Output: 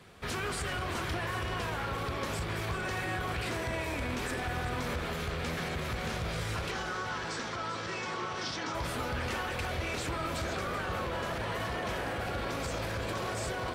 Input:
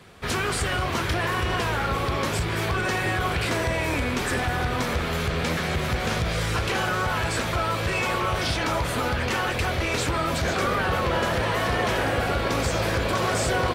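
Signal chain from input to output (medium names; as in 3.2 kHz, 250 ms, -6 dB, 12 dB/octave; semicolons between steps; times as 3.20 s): peak limiter -22 dBFS, peak gain reduction 8.5 dB; 6.71–8.75 s: cabinet simulation 170–7200 Hz, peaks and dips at 610 Hz -7 dB, 2.5 kHz -5 dB, 5.6 kHz +5 dB; echo whose repeats swap between lows and highs 193 ms, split 1.9 kHz, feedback 68%, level -8.5 dB; trim -5.5 dB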